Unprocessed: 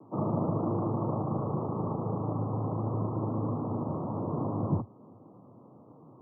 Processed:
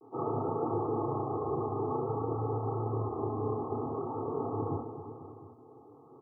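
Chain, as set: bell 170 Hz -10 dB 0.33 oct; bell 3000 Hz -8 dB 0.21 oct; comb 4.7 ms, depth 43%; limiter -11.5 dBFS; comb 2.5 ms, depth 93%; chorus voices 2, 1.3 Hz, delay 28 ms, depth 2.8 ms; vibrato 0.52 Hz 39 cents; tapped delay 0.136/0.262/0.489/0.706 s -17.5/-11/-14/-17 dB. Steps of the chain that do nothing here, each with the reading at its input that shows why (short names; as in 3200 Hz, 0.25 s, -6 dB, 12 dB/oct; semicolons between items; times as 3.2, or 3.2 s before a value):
bell 3000 Hz: input band ends at 1200 Hz; limiter -11.5 dBFS: input peak -17.0 dBFS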